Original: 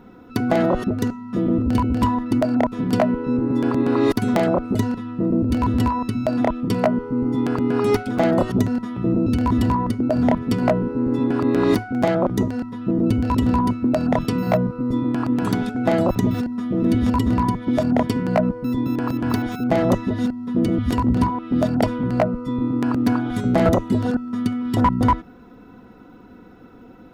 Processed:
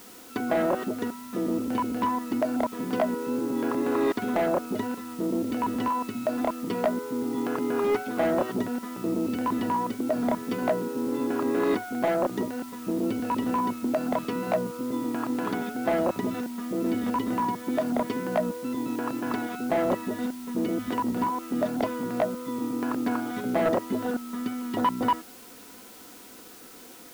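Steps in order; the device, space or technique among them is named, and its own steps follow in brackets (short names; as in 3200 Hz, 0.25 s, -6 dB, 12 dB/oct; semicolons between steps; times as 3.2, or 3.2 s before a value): tape answering machine (BPF 320–3100 Hz; soft clip -13.5 dBFS, distortion -16 dB; wow and flutter 24 cents; white noise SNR 21 dB); gain -2.5 dB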